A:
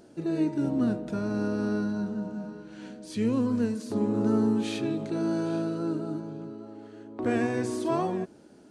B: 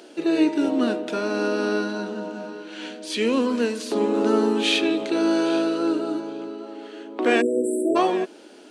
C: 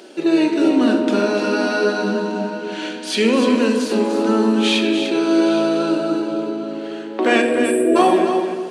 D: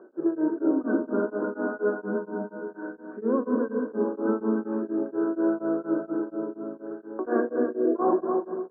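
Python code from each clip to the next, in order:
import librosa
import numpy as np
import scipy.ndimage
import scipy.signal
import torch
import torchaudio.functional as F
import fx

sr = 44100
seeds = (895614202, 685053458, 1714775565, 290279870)

y1 = fx.spec_erase(x, sr, start_s=7.41, length_s=0.55, low_hz=650.0, high_hz=7500.0)
y1 = scipy.signal.sosfilt(scipy.signal.butter(4, 290.0, 'highpass', fs=sr, output='sos'), y1)
y1 = fx.peak_eq(y1, sr, hz=3000.0, db=10.0, octaves=1.1)
y1 = y1 * librosa.db_to_amplitude(9.0)
y2 = fx.room_shoebox(y1, sr, seeds[0], volume_m3=1100.0, walls='mixed', distance_m=1.1)
y2 = fx.rider(y2, sr, range_db=4, speed_s=2.0)
y2 = fx.echo_feedback(y2, sr, ms=296, feedback_pct=17, wet_db=-8.0)
y2 = y2 * librosa.db_to_amplitude(3.0)
y3 = scipy.signal.sosfilt(scipy.signal.cheby1(6, 6, 1600.0, 'lowpass', fs=sr, output='sos'), y2)
y3 = y3 * np.abs(np.cos(np.pi * 4.2 * np.arange(len(y3)) / sr))
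y3 = y3 * librosa.db_to_amplitude(-4.5)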